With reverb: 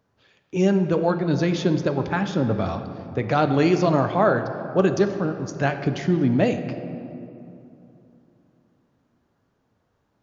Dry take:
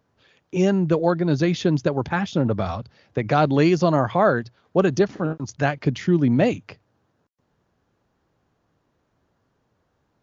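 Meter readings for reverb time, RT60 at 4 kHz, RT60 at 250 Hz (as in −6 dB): 2.9 s, 1.5 s, 3.5 s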